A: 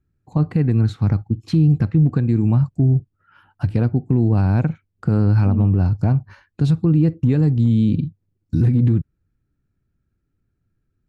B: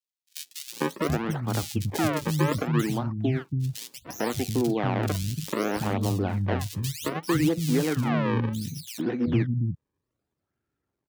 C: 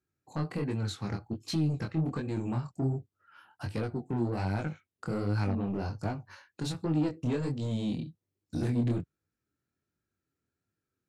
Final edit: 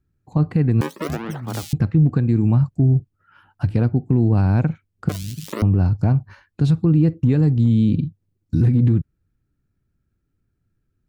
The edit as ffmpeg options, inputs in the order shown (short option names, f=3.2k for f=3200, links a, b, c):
-filter_complex "[1:a]asplit=2[a][b];[0:a]asplit=3[c][d][e];[c]atrim=end=0.812[f];[a]atrim=start=0.808:end=1.732[g];[d]atrim=start=1.728:end=5.092[h];[b]atrim=start=5.088:end=5.622[i];[e]atrim=start=5.618[j];[f][g]acrossfade=d=0.004:c1=hsin:c2=hsin[k];[k][h]acrossfade=d=0.004:c1=hsin:c2=hsin[l];[l][i]acrossfade=d=0.004:c1=hsin:c2=hsin[m];[m][j]acrossfade=d=0.004:c1=hsin:c2=hsin"